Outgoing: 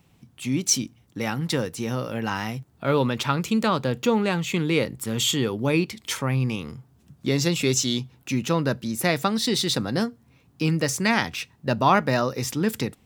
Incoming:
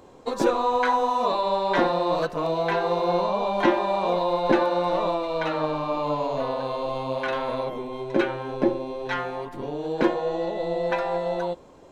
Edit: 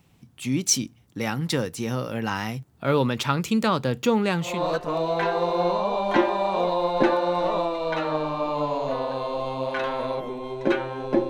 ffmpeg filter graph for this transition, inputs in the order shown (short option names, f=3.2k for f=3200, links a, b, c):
-filter_complex "[0:a]apad=whole_dur=11.29,atrim=end=11.29,atrim=end=4.69,asetpts=PTS-STARTPTS[a];[1:a]atrim=start=1.88:end=8.78,asetpts=PTS-STARTPTS[b];[a][b]acrossfade=d=0.3:c1=tri:c2=tri"